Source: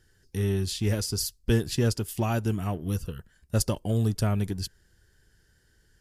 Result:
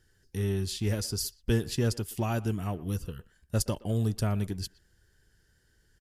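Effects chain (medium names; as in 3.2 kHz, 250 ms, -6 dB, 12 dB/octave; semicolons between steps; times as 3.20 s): speakerphone echo 120 ms, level -20 dB; trim -3 dB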